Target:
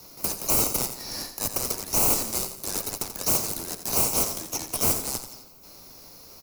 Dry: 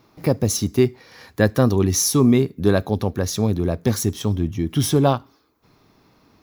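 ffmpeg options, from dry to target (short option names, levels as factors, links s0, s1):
-filter_complex "[0:a]highpass=1100,areverse,acompressor=threshold=0.02:ratio=5,areverse,aeval=exprs='0.0106*(abs(mod(val(0)/0.0106+3,4)-2)-1)':c=same,aexciter=amount=12.5:drive=3.5:freq=4500,asplit=2[s0][s1];[s1]acrusher=samples=25:mix=1:aa=0.000001,volume=0.501[s2];[s0][s2]amix=inputs=2:normalize=0,afreqshift=-16,aecho=1:1:86|172|258|344|430:0.316|0.139|0.0612|0.0269|0.0119"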